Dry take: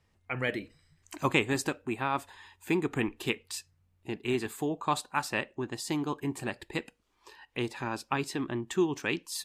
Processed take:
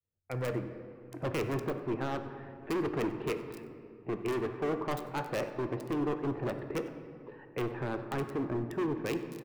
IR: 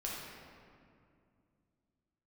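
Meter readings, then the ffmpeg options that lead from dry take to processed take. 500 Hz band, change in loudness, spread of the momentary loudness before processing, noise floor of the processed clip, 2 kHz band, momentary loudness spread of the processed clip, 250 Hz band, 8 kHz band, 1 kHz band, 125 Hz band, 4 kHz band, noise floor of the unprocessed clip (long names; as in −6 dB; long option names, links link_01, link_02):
+0.5 dB, −2.5 dB, 11 LU, −53 dBFS, −8.5 dB, 12 LU, −2.0 dB, −12.5 dB, −4.5 dB, 0.0 dB, −10.0 dB, −71 dBFS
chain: -filter_complex "[0:a]deesser=0.7,agate=range=-33dB:threshold=-56dB:ratio=3:detection=peak,equalizer=frequency=125:width_type=o:width=1:gain=8,equalizer=frequency=500:width_type=o:width=1:gain=8,equalizer=frequency=1000:width_type=o:width=1:gain=-7,acrossover=split=300|1900[link_01][link_02][link_03];[link_01]asoftclip=type=tanh:threshold=-28.5dB[link_04];[link_02]dynaudnorm=framelen=530:gausssize=7:maxgain=6dB[link_05];[link_03]acrusher=bits=4:mix=0:aa=0.000001[link_06];[link_04][link_05][link_06]amix=inputs=3:normalize=0,asoftclip=type=hard:threshold=-27dB,aecho=1:1:95:0.0944,asplit=2[link_07][link_08];[1:a]atrim=start_sample=2205,highshelf=frequency=4000:gain=-7[link_09];[link_08][link_09]afir=irnorm=-1:irlink=0,volume=-5.5dB[link_10];[link_07][link_10]amix=inputs=2:normalize=0,volume=-5dB"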